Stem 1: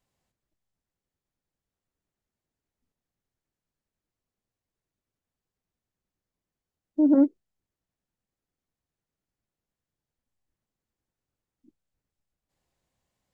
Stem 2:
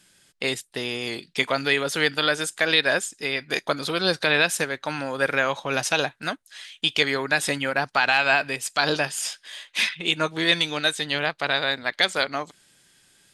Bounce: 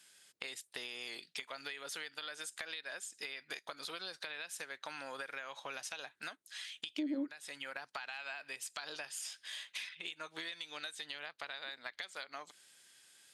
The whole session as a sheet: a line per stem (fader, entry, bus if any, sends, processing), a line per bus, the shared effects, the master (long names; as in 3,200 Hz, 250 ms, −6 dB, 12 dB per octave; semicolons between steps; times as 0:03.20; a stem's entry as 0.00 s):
+1.5 dB, 0.00 s, no send, resonant band-pass 390 Hz, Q 1.4
−3.5 dB, 0.00 s, no send, high-pass filter 1,100 Hz 6 dB per octave; downward compressor 6 to 1, threshold −33 dBFS, peak gain reduction 16.5 dB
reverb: not used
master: downward compressor 3 to 1, threshold −41 dBFS, peak gain reduction 18 dB